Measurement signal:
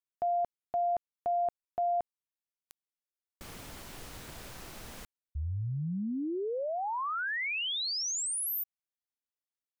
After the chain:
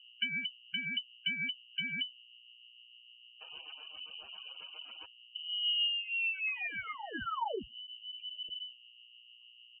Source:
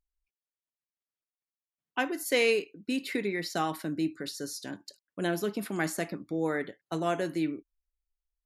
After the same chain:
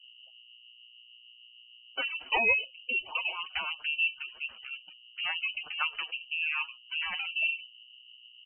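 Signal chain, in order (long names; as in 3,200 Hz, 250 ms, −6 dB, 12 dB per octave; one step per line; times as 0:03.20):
lower of the sound and its delayed copy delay 0.48 ms
reversed playback
upward compression, threshold −41 dBFS
reversed playback
mains hum 60 Hz, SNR 15 dB
in parallel at −7.5 dB: centre clipping without the shift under −37 dBFS
on the sum: comb filter 6.8 ms, depth 76%
rotating-speaker cabinet horn 7.5 Hz
gate on every frequency bin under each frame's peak −20 dB strong
voice inversion scrambler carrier 3,000 Hz
level −3.5 dB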